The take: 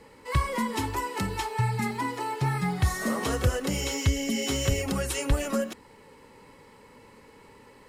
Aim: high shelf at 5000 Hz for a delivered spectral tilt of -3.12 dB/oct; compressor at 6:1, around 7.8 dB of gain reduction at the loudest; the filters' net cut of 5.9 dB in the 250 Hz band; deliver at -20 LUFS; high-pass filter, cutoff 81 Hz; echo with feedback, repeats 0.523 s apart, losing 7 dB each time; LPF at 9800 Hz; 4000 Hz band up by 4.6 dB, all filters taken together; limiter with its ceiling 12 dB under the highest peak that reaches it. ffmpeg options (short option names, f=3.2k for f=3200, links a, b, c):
-af "highpass=81,lowpass=9.8k,equalizer=f=250:t=o:g=-7.5,equalizer=f=4k:t=o:g=4.5,highshelf=f=5k:g=4.5,acompressor=threshold=-29dB:ratio=6,alimiter=level_in=4dB:limit=-24dB:level=0:latency=1,volume=-4dB,aecho=1:1:523|1046|1569|2092|2615:0.447|0.201|0.0905|0.0407|0.0183,volume=16dB"